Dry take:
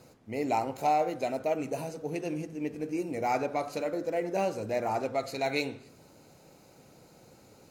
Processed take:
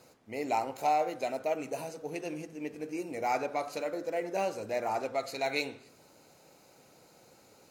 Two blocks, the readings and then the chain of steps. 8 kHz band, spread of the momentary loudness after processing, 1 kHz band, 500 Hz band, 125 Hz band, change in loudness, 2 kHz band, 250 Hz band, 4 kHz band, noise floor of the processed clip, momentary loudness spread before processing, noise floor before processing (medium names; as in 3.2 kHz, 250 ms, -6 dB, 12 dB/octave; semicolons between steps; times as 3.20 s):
0.0 dB, 10 LU, -1.5 dB, -2.5 dB, -8.5 dB, -2.0 dB, 0.0 dB, -5.0 dB, 0.0 dB, -61 dBFS, 8 LU, -58 dBFS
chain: bass shelf 290 Hz -10.5 dB